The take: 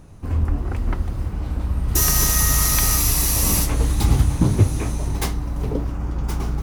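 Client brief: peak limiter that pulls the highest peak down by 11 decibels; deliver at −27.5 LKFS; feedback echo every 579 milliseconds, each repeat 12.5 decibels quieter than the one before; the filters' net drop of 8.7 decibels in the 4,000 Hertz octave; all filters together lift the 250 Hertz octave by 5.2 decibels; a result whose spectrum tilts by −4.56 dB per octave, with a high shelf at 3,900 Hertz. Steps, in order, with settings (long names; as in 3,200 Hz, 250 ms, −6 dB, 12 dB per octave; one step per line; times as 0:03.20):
parametric band 250 Hz +7 dB
high-shelf EQ 3,900 Hz −6 dB
parametric band 4,000 Hz −7.5 dB
brickwall limiter −13 dBFS
repeating echo 579 ms, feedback 24%, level −12.5 dB
level −4 dB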